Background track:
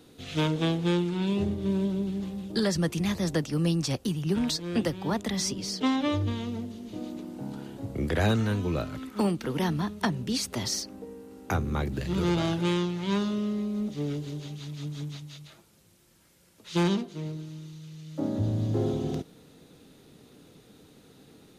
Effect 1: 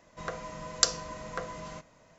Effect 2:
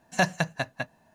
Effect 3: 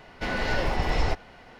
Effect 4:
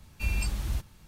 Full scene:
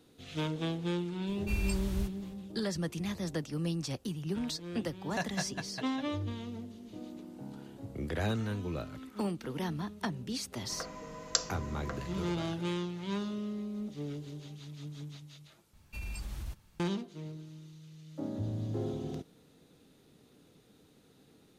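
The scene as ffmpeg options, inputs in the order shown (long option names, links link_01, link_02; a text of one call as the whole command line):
ffmpeg -i bed.wav -i cue0.wav -i cue1.wav -i cue2.wav -i cue3.wav -filter_complex "[4:a]asplit=2[link_01][link_02];[0:a]volume=-8dB[link_03];[2:a]aecho=1:1:203:0.562[link_04];[link_02]alimiter=limit=-24dB:level=0:latency=1:release=42[link_05];[link_03]asplit=2[link_06][link_07];[link_06]atrim=end=15.734[link_08];[link_05]atrim=end=1.07,asetpts=PTS-STARTPTS,volume=-8dB[link_09];[link_07]atrim=start=16.796[link_10];[link_01]atrim=end=1.07,asetpts=PTS-STARTPTS,volume=-4dB,afade=type=in:duration=0.004:curve=hsin,afade=type=out:start_time=1.066:duration=0.004:curve=hsin,adelay=1270[link_11];[link_04]atrim=end=1.14,asetpts=PTS-STARTPTS,volume=-12dB,afade=type=in:duration=0.004:curve=hsin,afade=type=out:start_time=1.136:duration=0.004:curve=hsin,adelay=4980[link_12];[1:a]atrim=end=2.18,asetpts=PTS-STARTPTS,volume=-5.5dB,afade=type=in:duration=0.004:curve=hsin,afade=type=out:start_time=2.176:duration=0.004:curve=hsin,adelay=10520[link_13];[link_08][link_09]acrossfade=duration=0.004:curve1=hsin:curve2=hsin[link_14];[link_14][link_10]acrossfade=duration=0.004:curve1=hsin:curve2=hsin[link_15];[link_15][link_11][link_12][link_13]amix=inputs=4:normalize=0" out.wav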